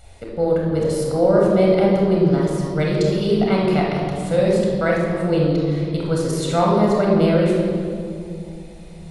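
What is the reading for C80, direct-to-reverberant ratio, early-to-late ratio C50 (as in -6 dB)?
2.0 dB, -2.5 dB, 0.0 dB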